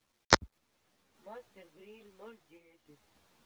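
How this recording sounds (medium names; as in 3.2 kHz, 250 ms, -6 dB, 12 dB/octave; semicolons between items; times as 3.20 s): a quantiser's noise floor 12-bit, dither none; random-step tremolo; a shimmering, thickened sound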